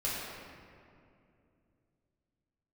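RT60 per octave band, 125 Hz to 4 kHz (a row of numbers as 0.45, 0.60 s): 3.7, 3.4, 2.9, 2.2, 2.0, 1.3 s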